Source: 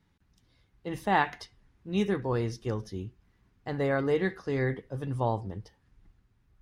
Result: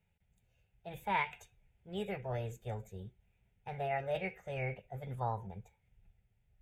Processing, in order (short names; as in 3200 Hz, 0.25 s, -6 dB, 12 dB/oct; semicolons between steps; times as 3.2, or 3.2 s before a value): fixed phaser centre 1100 Hz, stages 6; formant shift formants +4 st; gain -5.5 dB